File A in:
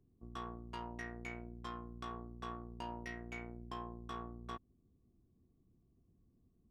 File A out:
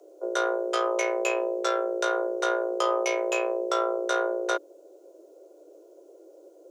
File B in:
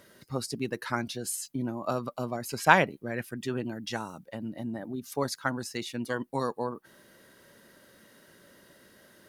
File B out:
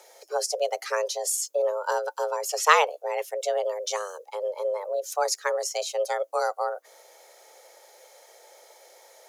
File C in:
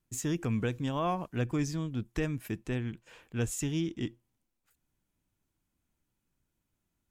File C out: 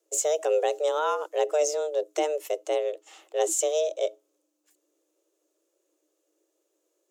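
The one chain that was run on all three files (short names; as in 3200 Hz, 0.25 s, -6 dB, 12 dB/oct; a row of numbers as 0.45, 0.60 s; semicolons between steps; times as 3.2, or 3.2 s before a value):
fifteen-band EQ 250 Hz +6 dB, 1600 Hz -5 dB, 6300 Hz +10 dB; frequency shift +300 Hz; match loudness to -27 LUFS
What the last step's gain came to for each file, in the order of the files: +18.5, +2.5, +3.5 dB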